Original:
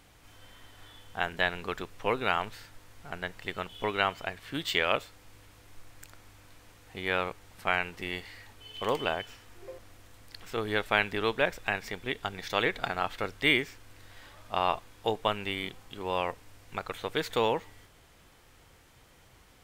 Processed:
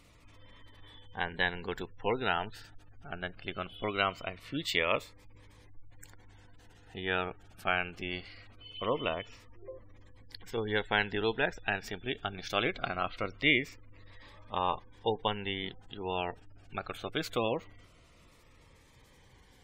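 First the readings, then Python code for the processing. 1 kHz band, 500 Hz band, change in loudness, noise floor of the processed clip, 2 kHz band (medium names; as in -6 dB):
-3.5 dB, -2.5 dB, -2.5 dB, -60 dBFS, -2.5 dB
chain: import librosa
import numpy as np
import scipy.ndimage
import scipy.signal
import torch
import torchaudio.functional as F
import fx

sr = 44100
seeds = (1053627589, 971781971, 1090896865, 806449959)

y = fx.spec_gate(x, sr, threshold_db=-25, keep='strong')
y = fx.notch_cascade(y, sr, direction='falling', hz=0.22)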